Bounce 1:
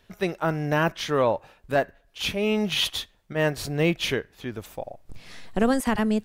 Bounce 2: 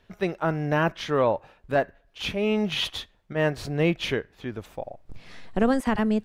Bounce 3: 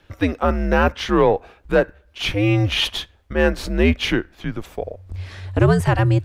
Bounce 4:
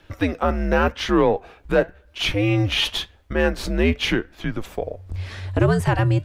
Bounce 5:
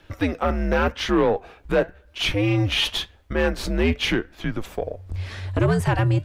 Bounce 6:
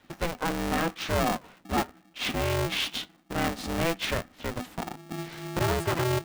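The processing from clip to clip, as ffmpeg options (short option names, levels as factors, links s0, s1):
-af "lowpass=f=3100:p=1"
-af "acontrast=89,afreqshift=-94"
-filter_complex "[0:a]asplit=2[s0][s1];[s1]acompressor=threshold=0.0631:ratio=6,volume=1.19[s2];[s0][s2]amix=inputs=2:normalize=0,flanger=delay=3:depth=4.1:regen=79:speed=0.9:shape=sinusoidal"
-af "asoftclip=type=tanh:threshold=0.299"
-af "aeval=exprs='val(0)*sgn(sin(2*PI*250*n/s))':c=same,volume=0.447"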